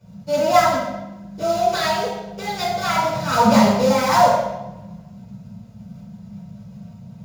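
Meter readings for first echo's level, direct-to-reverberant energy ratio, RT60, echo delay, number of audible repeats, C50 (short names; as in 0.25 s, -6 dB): none, -14.5 dB, 1.0 s, none, none, -1.0 dB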